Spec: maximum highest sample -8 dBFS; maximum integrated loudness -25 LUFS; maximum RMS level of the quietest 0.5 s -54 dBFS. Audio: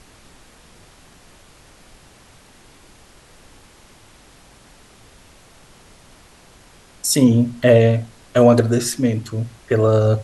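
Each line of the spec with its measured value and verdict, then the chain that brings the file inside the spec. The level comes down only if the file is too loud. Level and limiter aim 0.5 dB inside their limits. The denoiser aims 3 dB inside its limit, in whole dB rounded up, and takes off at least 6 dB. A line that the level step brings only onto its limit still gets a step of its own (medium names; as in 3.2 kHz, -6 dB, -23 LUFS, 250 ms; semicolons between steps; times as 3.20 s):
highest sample -2.5 dBFS: fail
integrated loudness -17.0 LUFS: fail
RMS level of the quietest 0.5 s -48 dBFS: fail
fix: trim -8.5 dB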